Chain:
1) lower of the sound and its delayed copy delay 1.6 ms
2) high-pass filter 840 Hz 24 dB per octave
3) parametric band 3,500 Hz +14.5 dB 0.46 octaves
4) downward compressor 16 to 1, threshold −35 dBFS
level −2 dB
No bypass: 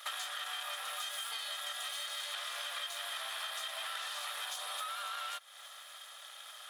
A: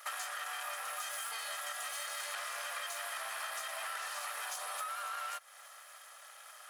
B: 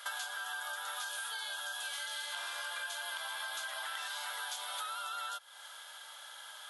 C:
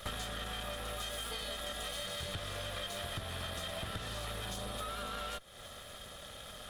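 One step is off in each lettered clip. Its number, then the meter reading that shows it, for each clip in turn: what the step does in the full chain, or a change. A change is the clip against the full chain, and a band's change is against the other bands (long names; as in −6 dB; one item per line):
3, 4 kHz band −8.5 dB
1, 2 kHz band +4.0 dB
2, 500 Hz band +12.0 dB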